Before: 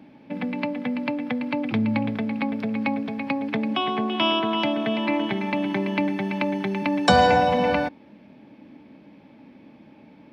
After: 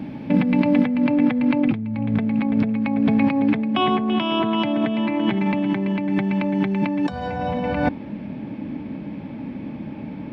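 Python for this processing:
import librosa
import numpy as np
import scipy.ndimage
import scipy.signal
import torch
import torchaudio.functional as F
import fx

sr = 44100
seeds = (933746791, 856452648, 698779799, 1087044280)

y = fx.bass_treble(x, sr, bass_db=10, treble_db=fx.steps((0.0, -2.0), (0.84, -9.0)))
y = fx.over_compress(y, sr, threshold_db=-27.0, ratio=-1.0)
y = y * 10.0 ** (6.0 / 20.0)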